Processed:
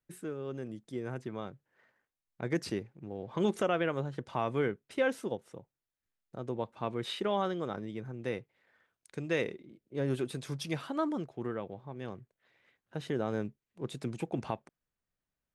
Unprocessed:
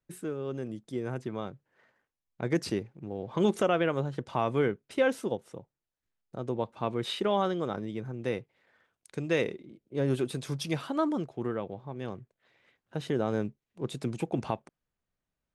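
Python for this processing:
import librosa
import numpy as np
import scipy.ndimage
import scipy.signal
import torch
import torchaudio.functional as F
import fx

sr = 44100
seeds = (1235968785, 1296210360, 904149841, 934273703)

y = fx.peak_eq(x, sr, hz=1800.0, db=2.5, octaves=0.77)
y = y * 10.0 ** (-4.0 / 20.0)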